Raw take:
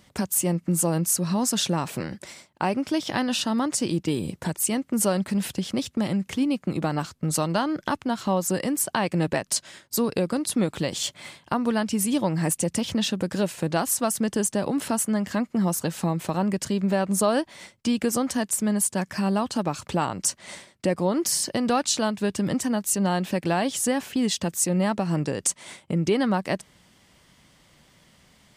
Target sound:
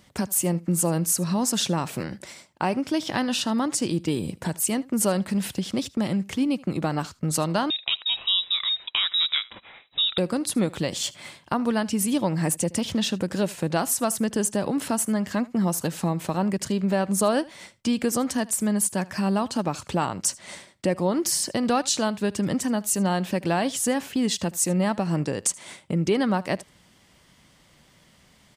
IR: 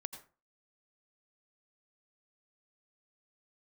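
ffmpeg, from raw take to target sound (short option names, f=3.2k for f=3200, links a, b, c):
-filter_complex "[0:a]aecho=1:1:77:0.0794,asettb=1/sr,asplit=3[a][b][c];[a]atrim=end=7.704[d];[b]atrim=start=7.7:end=10.18,asetpts=PTS-STARTPTS,afade=t=in:d=0.004:c=qsin,afade=t=out:st=2.476:d=0.004:c=qsin,lowpass=f=3.4k:t=q:w=0.5098,lowpass=f=3.4k:t=q:w=0.6013,lowpass=f=3.4k:t=q:w=0.9,lowpass=f=3.4k:t=q:w=2.563,afreqshift=-4000[e];[c]atrim=start=10.176[f];[d][e]acrossfade=d=0.004:c1=hsin:c2=qsin[g];[g][f]acrossfade=d=0.004:c1=qsin:c2=hsin"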